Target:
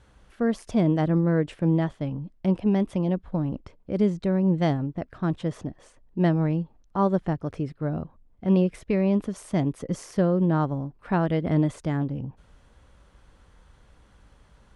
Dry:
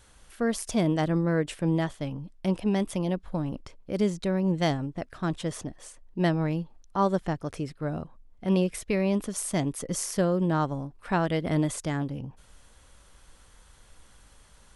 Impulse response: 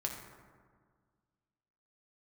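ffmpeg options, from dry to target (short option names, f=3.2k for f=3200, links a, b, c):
-af "highpass=f=260:p=1,aemphasis=mode=reproduction:type=riaa"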